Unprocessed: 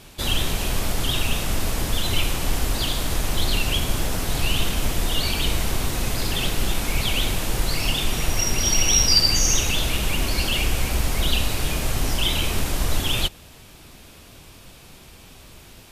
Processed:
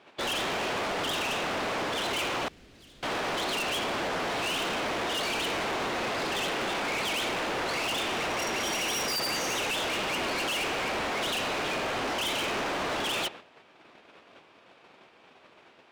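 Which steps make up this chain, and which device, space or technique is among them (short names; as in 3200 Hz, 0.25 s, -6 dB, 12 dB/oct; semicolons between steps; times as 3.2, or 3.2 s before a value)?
walkie-talkie (BPF 400–2200 Hz; hard clip -36 dBFS, distortion -7 dB; gate -51 dBFS, range -12 dB); 2.48–3.03 passive tone stack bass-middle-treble 10-0-1; gain +7.5 dB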